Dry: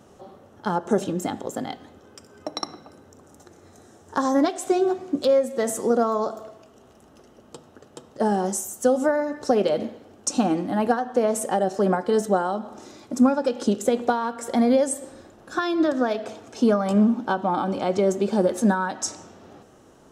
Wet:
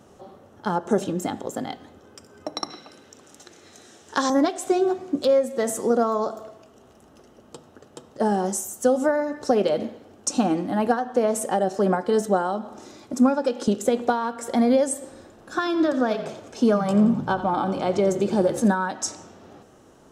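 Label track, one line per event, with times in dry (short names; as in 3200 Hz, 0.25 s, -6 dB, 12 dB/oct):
2.700000	4.300000	weighting filter D
13.130000	13.680000	HPF 150 Hz
15.040000	18.680000	frequency-shifting echo 87 ms, feedback 50%, per repeat -32 Hz, level -13 dB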